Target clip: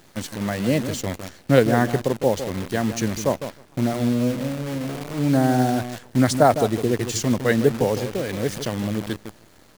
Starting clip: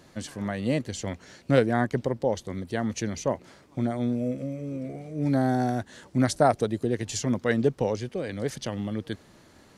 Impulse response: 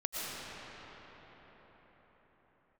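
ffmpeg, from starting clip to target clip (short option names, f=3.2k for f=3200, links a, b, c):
-filter_complex "[0:a]asplit=2[a][b];[b]adelay=157,lowpass=f=890:p=1,volume=-9dB,asplit=2[c][d];[d]adelay=157,lowpass=f=890:p=1,volume=0.17,asplit=2[e][f];[f]adelay=157,lowpass=f=890:p=1,volume=0.17[g];[a][c][e][g]amix=inputs=4:normalize=0,acrusher=bits=7:dc=4:mix=0:aa=0.000001,volume=5dB"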